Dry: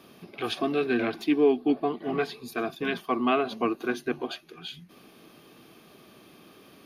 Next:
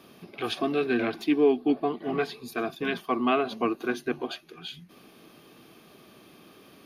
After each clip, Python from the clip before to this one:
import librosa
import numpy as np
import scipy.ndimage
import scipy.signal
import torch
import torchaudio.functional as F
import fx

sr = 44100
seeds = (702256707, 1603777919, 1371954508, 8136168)

y = x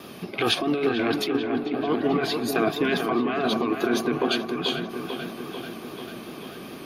y = fx.over_compress(x, sr, threshold_db=-31.0, ratio=-1.0)
y = fx.vibrato(y, sr, rate_hz=4.8, depth_cents=51.0)
y = fx.echo_wet_lowpass(y, sr, ms=442, feedback_pct=67, hz=2400.0, wet_db=-6)
y = F.gain(torch.from_numpy(y), 6.5).numpy()